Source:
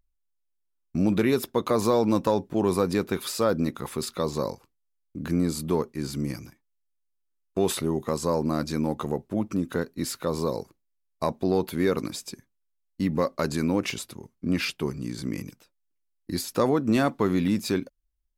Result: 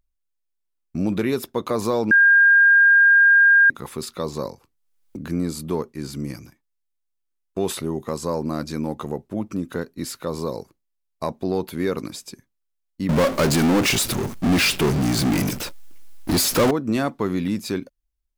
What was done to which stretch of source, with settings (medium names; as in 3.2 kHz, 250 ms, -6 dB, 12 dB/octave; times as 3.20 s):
2.11–3.70 s: bleep 1.61 kHz -10 dBFS
4.46–5.17 s: three bands compressed up and down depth 100%
13.09–16.71 s: power-law waveshaper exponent 0.35